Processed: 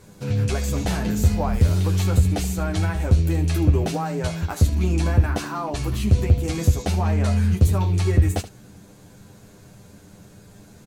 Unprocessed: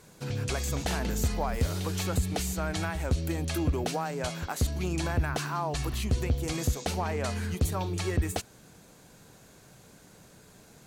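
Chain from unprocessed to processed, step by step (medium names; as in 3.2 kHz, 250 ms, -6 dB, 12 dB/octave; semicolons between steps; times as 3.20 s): rattle on loud lows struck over -33 dBFS, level -40 dBFS; bass shelf 350 Hz +9.5 dB; early reflections 10 ms -3 dB, 24 ms -11 dB, 78 ms -12.5 dB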